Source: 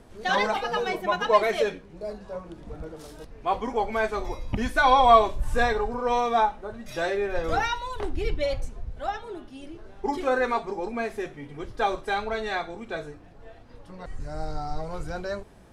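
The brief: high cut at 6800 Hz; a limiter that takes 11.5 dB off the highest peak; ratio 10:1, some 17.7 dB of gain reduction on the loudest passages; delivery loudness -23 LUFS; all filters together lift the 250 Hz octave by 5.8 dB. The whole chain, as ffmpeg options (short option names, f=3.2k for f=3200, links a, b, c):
-af "lowpass=6.8k,equalizer=f=250:t=o:g=7,acompressor=threshold=-29dB:ratio=10,volume=16.5dB,alimiter=limit=-14dB:level=0:latency=1"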